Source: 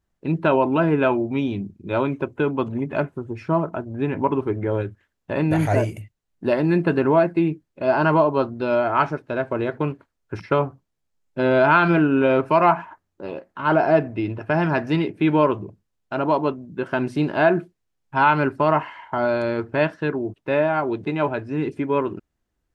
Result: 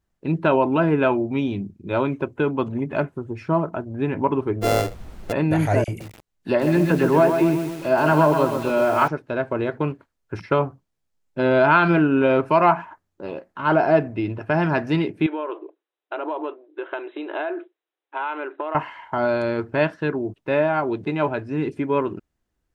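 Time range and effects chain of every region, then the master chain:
4.61–5.31 s: sorted samples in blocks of 64 samples + peaking EQ 480 Hz +14.5 dB 0.49 oct + added noise brown -36 dBFS
5.84–9.08 s: phase dispersion lows, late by 40 ms, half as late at 1.9 kHz + bit-crushed delay 128 ms, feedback 55%, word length 6-bit, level -6 dB
15.26–18.75 s: compression 12:1, threshold -22 dBFS + brick-wall FIR band-pass 290–4000 Hz
whole clip: none

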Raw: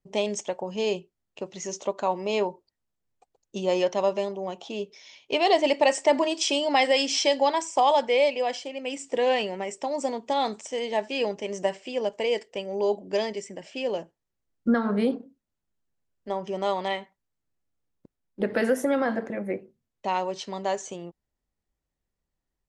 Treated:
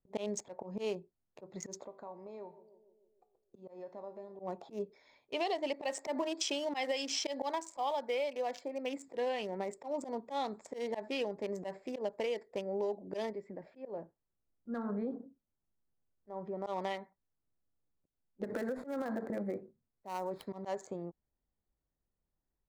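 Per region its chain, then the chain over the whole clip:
1.84–4.40 s: band-passed feedback delay 149 ms, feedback 64%, band-pass 350 Hz, level -23 dB + compression 2:1, threshold -43 dBFS + feedback comb 56 Hz, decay 0.55 s
5.85–9.08 s: high-pass 170 Hz + companded quantiser 8-bit
13.30–16.67 s: compression 1.5:1, threshold -40 dBFS + distance through air 140 m
18.44–20.47 s: dead-time distortion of 0.073 ms + compression, threshold -27 dBFS
whole clip: local Wiener filter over 15 samples; slow attack 121 ms; compression 6:1, threshold -29 dBFS; trim -3 dB

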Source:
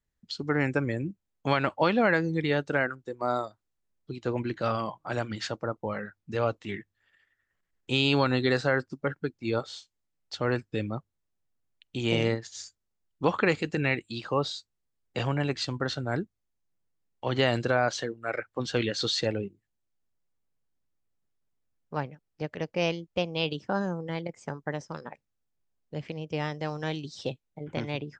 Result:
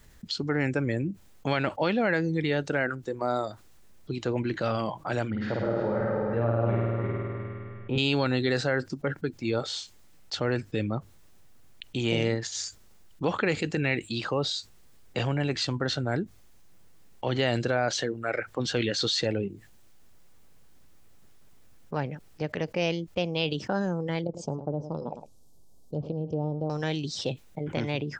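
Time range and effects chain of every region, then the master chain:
5.30–7.98 s: backward echo that repeats 177 ms, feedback 43%, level -2 dB + low-pass 1.2 kHz + flutter echo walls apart 8.9 m, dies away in 1.4 s
24.24–26.70 s: Butterworth band-stop 1.9 kHz, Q 0.52 + low-pass that closes with the level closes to 850 Hz, closed at -30 dBFS + delay 107 ms -18.5 dB
whole clip: dynamic bell 1.1 kHz, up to -6 dB, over -43 dBFS, Q 2.5; level flattener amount 50%; trim -2.5 dB

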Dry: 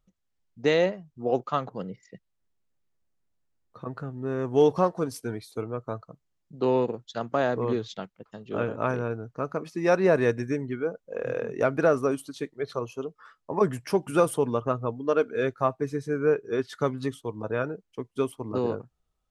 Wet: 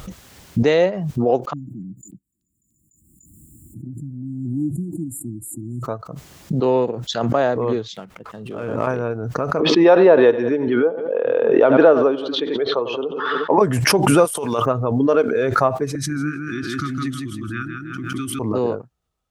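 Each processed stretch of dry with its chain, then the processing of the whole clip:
1.53–5.83 s: brick-wall FIR band-stop 350–6900 Hz + repeats whose band climbs or falls 294 ms, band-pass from 2 kHz, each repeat 0.7 oct, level -1.5 dB
7.96–8.87 s: median filter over 9 samples + compression 4:1, threshold -32 dBFS
9.60–13.58 s: cabinet simulation 250–3800 Hz, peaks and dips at 310 Hz +4 dB, 470 Hz +4 dB, 880 Hz +5 dB, 2.2 kHz -5 dB, 3.4 kHz +9 dB + feedback delay 89 ms, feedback 50%, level -19 dB
14.25–14.66 s: tilt EQ +3.5 dB/octave + compressor with a negative ratio -34 dBFS
15.95–18.39 s: Chebyshev band-stop 350–1200 Hz, order 5 + feedback delay 160 ms, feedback 29%, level -4 dB + swell ahead of each attack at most 21 dB/s
whole clip: high-pass 50 Hz; dynamic bell 620 Hz, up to +4 dB, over -36 dBFS, Q 1.1; swell ahead of each attack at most 31 dB/s; trim +3.5 dB

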